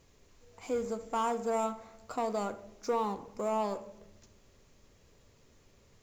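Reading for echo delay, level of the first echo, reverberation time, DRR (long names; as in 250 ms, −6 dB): no echo audible, no echo audible, 0.95 s, 9.5 dB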